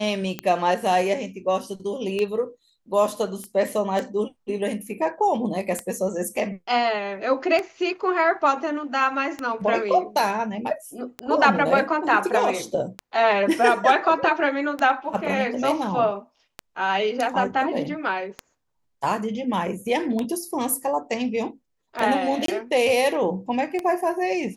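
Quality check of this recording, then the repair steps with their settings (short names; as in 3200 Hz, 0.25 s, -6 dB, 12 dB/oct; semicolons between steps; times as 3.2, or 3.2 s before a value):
tick 33 1/3 rpm -13 dBFS
3.44 pop -23 dBFS
22.46–22.48 gap 23 ms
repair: de-click; interpolate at 22.46, 23 ms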